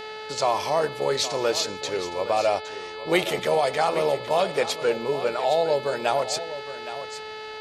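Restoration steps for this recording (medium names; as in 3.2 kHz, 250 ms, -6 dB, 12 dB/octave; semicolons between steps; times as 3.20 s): de-hum 432.9 Hz, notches 11; inverse comb 815 ms -12.5 dB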